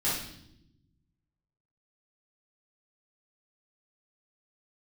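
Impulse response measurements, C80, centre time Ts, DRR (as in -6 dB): 6.0 dB, 54 ms, -10.0 dB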